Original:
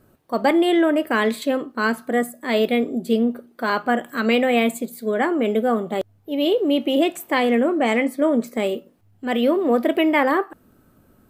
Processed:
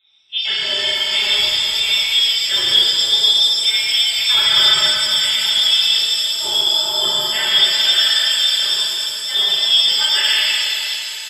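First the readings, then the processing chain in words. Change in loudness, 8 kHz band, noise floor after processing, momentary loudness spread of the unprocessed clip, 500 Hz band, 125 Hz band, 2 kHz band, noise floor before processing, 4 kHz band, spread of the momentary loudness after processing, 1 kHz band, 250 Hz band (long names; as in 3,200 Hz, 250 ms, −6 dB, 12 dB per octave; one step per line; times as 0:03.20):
+7.5 dB, +18.0 dB, −26 dBFS, 8 LU, −15.0 dB, can't be measured, +4.0 dB, −57 dBFS, +23.0 dB, 5 LU, −7.0 dB, below −20 dB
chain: comb filter 4.4 ms, depth 94%
voice inversion scrambler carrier 3,800 Hz
reverb with rising layers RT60 3.3 s, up +7 semitones, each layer −8 dB, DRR −11 dB
level −11 dB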